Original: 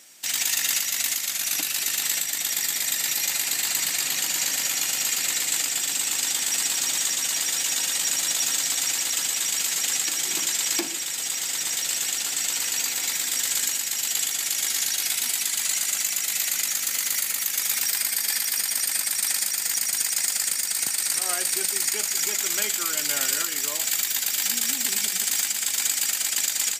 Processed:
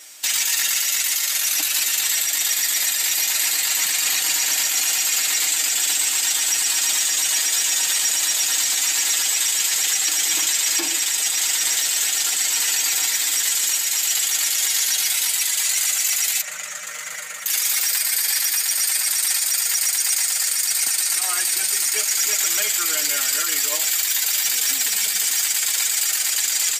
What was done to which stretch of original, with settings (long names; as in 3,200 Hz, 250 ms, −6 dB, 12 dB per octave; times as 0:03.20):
0:16.41–0:17.46: drawn EQ curve 190 Hz 0 dB, 360 Hz −18 dB, 550 Hz +5 dB, 850 Hz −7 dB, 1,300 Hz −1 dB, 4,700 Hz −18 dB, 7,000 Hz −12 dB, 12,000 Hz −23 dB
whole clip: high-pass filter 620 Hz 6 dB per octave; comb filter 6.5 ms, depth 85%; brickwall limiter −16 dBFS; level +6 dB